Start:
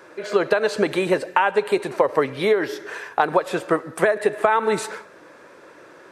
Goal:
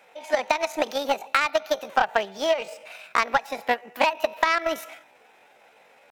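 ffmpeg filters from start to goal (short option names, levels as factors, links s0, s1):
-af "aeval=exprs='0.75*(cos(1*acos(clip(val(0)/0.75,-1,1)))-cos(1*PI/2))+0.0596*(cos(7*acos(clip(val(0)/0.75,-1,1)))-cos(7*PI/2))':c=same,asetrate=66075,aresample=44100,atempo=0.66742,volume=0.794"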